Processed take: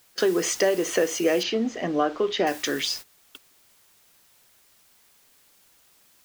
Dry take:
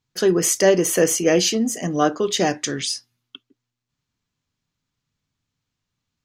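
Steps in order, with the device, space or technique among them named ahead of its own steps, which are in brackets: baby monitor (BPF 320–4200 Hz; compressor, threshold -21 dBFS, peak gain reduction 10 dB; white noise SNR 15 dB; gate -37 dBFS, range -17 dB); 1.43–2.47 air absorption 170 m; gain +2.5 dB

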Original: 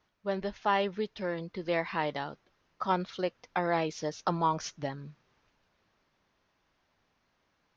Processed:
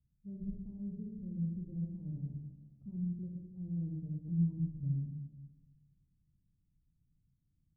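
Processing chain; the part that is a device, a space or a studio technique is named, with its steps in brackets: club heard from the street (limiter -22 dBFS, peak gain reduction 7.5 dB; LPF 160 Hz 24 dB/oct; reverb RT60 1.4 s, pre-delay 27 ms, DRR -1.5 dB); gain +4 dB

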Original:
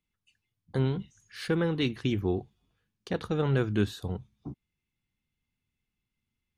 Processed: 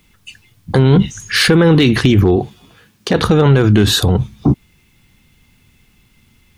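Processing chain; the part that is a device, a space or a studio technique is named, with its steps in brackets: loud club master (compressor 2.5:1, threshold -29 dBFS, peak gain reduction 6.5 dB; hard clip -22 dBFS, distortion -28 dB; maximiser +33.5 dB); 2.36–3.15 HPF 190 Hz 6 dB/oct; gain -2 dB

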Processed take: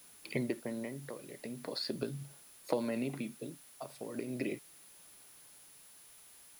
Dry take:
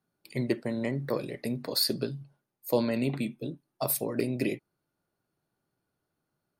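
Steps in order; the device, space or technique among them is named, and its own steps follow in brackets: medium wave at night (BPF 150–3600 Hz; compressor 6:1, threshold -39 dBFS, peak gain reduction 17.5 dB; tremolo 0.4 Hz, depth 76%; whine 10000 Hz -67 dBFS; white noise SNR 19 dB); gain +8.5 dB

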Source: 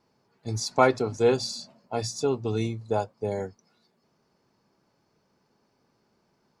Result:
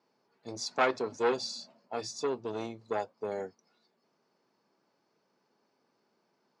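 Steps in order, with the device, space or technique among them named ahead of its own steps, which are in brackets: public-address speaker with an overloaded transformer (core saturation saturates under 1600 Hz; BPF 250–6400 Hz); gain -3.5 dB

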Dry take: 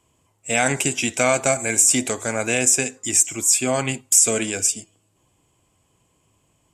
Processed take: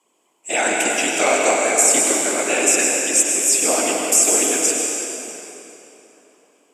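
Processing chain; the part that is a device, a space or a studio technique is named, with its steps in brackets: whispering ghost (whisperiser; HPF 280 Hz 24 dB/oct; reverb RT60 3.4 s, pre-delay 90 ms, DRR -1.5 dB)

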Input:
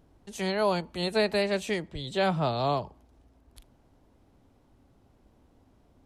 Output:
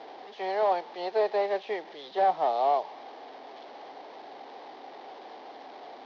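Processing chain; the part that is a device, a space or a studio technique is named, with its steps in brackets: digital answering machine (BPF 340–3100 Hz; delta modulation 32 kbps, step -40.5 dBFS; speaker cabinet 410–4500 Hz, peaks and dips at 430 Hz +4 dB, 770 Hz +10 dB, 1400 Hz -7 dB, 2600 Hz -6 dB)

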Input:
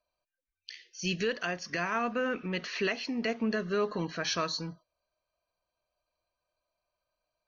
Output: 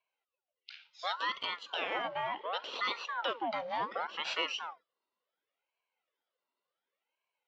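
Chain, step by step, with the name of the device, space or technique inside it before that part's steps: voice changer toy (ring modulator with a swept carrier 1000 Hz, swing 65%, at 0.69 Hz; speaker cabinet 460–4300 Hz, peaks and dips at 500 Hz +7 dB, 1700 Hz -5 dB, 2900 Hz +4 dB)

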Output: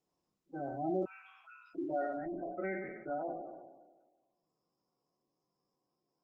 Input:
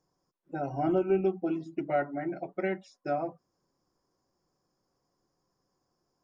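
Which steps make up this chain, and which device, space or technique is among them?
spectral trails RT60 1.39 s; 1.05–1.75 steep high-pass 1000 Hz 48 dB/oct; 2.39–3.08 dynamic EQ 1700 Hz, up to +4 dB, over -48 dBFS, Q 1.3; noise-suppressed video call (HPF 130 Hz 24 dB/oct; spectral gate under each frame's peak -15 dB strong; gain -8.5 dB; Opus 16 kbps 48000 Hz)

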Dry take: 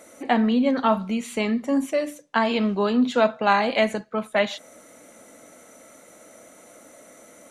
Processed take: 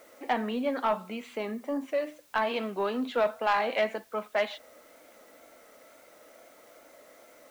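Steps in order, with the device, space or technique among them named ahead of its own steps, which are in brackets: tape answering machine (BPF 370–3200 Hz; soft clip -13 dBFS, distortion -16 dB; wow and flutter; white noise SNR 30 dB); 1.23–1.88 dynamic EQ 2500 Hz, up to -7 dB, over -44 dBFS, Q 0.78; gain -4 dB

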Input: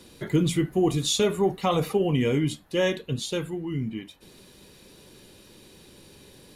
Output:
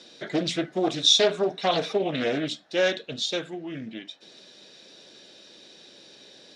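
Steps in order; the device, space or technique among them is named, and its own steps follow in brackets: 1.01–2.06 ripple EQ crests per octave 1.6, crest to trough 7 dB; full-range speaker at full volume (Doppler distortion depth 0.55 ms; speaker cabinet 290–7000 Hz, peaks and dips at 400 Hz -3 dB, 650 Hz +7 dB, 1000 Hz -6 dB, 1600 Hz +4 dB, 3700 Hz +8 dB, 5400 Hz +7 dB)

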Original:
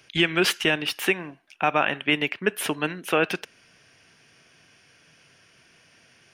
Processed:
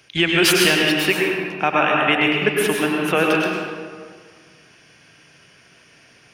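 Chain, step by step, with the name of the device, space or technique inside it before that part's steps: 0.38–0.82 high shelf 5600 Hz +9.5 dB; stairwell (reverb RT60 1.8 s, pre-delay 94 ms, DRR -2 dB); gain +2.5 dB

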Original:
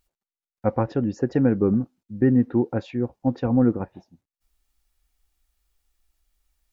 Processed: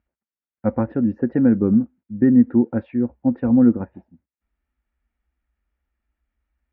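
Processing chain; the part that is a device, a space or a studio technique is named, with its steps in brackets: bass cabinet (speaker cabinet 61–2100 Hz, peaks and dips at 63 Hz +8 dB, 130 Hz -5 dB, 230 Hz +7 dB, 420 Hz -4 dB, 750 Hz -5 dB, 1100 Hz -5 dB); gain +1.5 dB

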